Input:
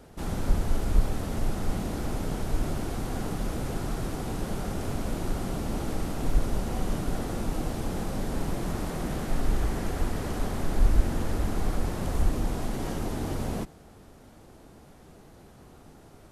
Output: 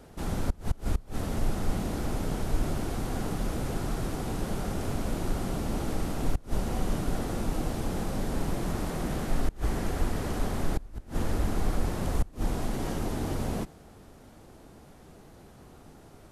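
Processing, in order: inverted gate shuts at -14 dBFS, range -25 dB

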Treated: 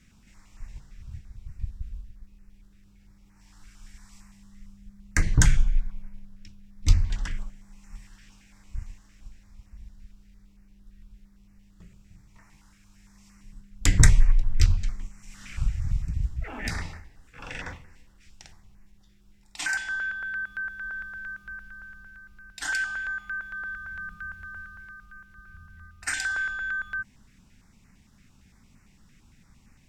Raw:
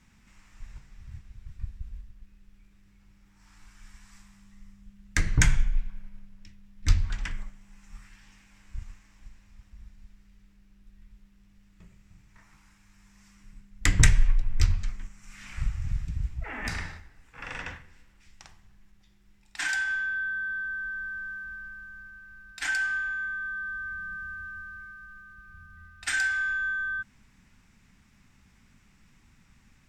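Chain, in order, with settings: step-sequenced notch 8.8 Hz 920–3400 Hz; trim +3 dB

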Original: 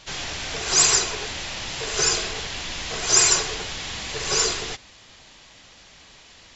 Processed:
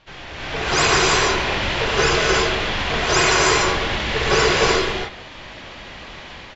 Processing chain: low-pass 2.6 kHz 12 dB/octave; level rider gain up to 16.5 dB; speakerphone echo 170 ms, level -16 dB; gated-style reverb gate 350 ms rising, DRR -0.5 dB; trim -4 dB

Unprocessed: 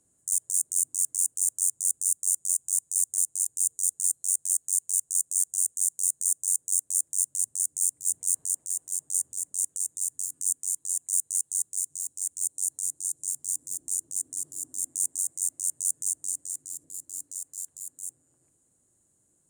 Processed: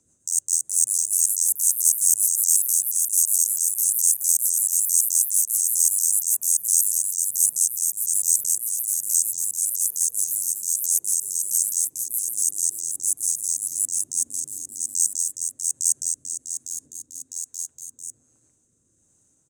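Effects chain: rotary cabinet horn 7 Hz, later 1.2 Hz, at 1.52 s; pitch shift -1.5 st; ever faster or slower copies 464 ms, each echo +3 st, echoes 3; trim +6.5 dB

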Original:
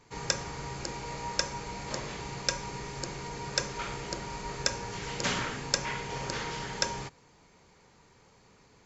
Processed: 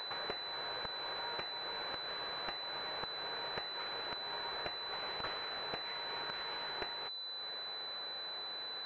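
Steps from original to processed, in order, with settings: differentiator; upward compressor, threshold -46 dBFS; on a send at -19.5 dB: reverberation RT60 1.3 s, pre-delay 7 ms; on the sum: overload inside the chain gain 27.5 dB; compression 4:1, threshold -48 dBFS, peak gain reduction 13 dB; class-D stage that switches slowly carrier 4 kHz; trim +11.5 dB

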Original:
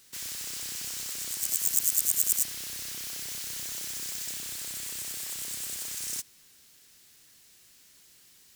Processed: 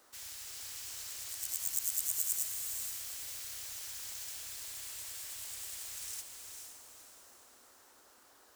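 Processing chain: FFT filter 110 Hz 0 dB, 170 Hz -28 dB, 710 Hz -2 dB; band noise 240–1600 Hz -61 dBFS; on a send: echo that smears into a reverb 469 ms, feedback 43%, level -5 dB; on the sum: trim -7 dB

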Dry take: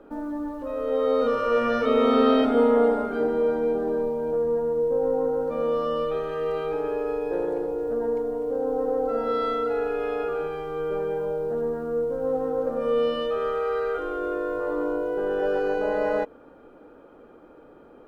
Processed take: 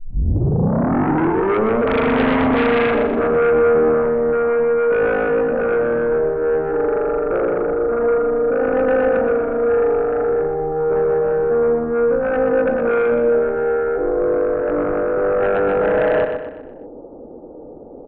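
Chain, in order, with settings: tape start-up on the opening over 1.78 s; steep low-pass 820 Hz 36 dB/octave; in parallel at -9 dB: sine folder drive 15 dB, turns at -9.5 dBFS; on the sum: feedback delay 123 ms, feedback 45%, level -7 dB

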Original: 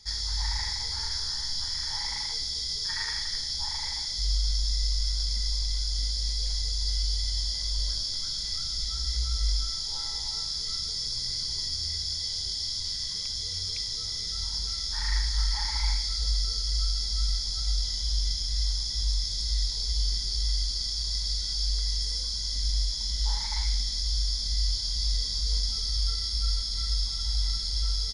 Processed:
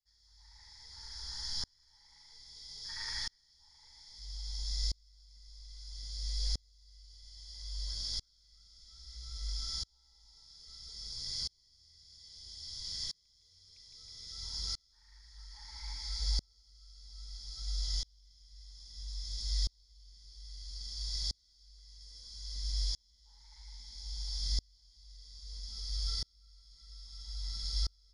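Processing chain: two-band feedback delay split 670 Hz, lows 755 ms, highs 160 ms, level -8 dB; sawtooth tremolo in dB swelling 0.61 Hz, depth 36 dB; trim -5 dB

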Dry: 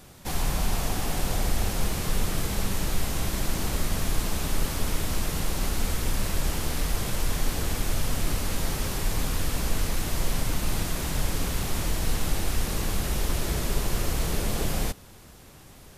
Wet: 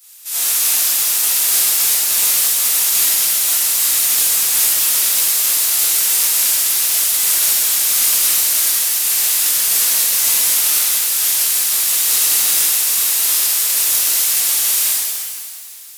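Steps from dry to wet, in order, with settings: spectral peaks clipped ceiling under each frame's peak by 29 dB; pre-emphasis filter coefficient 0.97; pitch-shifted reverb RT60 2 s, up +7 st, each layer -8 dB, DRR -10.5 dB; trim -1 dB

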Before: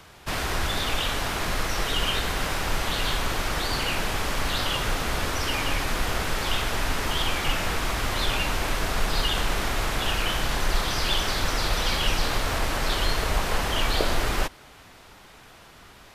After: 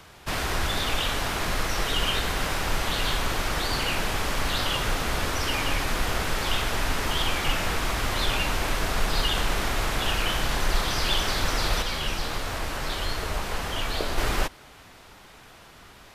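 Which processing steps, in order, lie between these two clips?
11.82–14.18 s: flange 1.5 Hz, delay 9.8 ms, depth 5.5 ms, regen +68%

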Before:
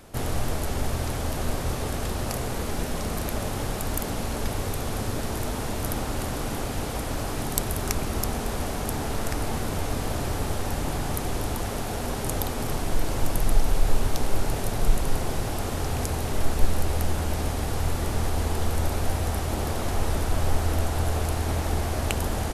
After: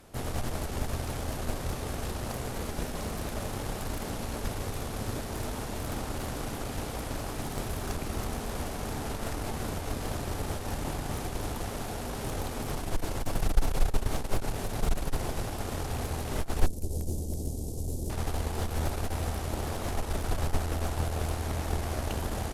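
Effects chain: 16.66–18.10 s: Chebyshev band-stop 390–6800 Hz, order 2; Chebyshev shaper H 4 -11 dB, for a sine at -1 dBFS; slew-rate limiter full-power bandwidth 180 Hz; trim -5.5 dB

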